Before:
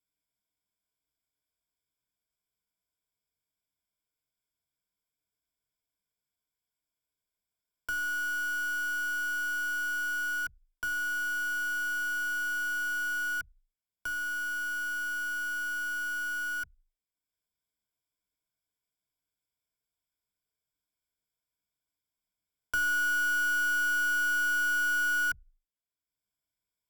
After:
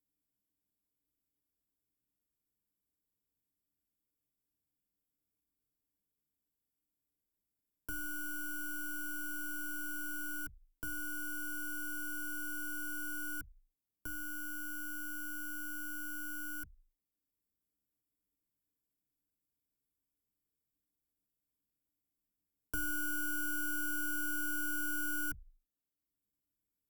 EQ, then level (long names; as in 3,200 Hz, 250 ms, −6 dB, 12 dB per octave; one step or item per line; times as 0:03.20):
drawn EQ curve 180 Hz 0 dB, 270 Hz +7 dB, 660 Hz −10 dB, 1,900 Hz −16 dB, 4,400 Hz −16 dB, 14,000 Hz +1 dB
+2.5 dB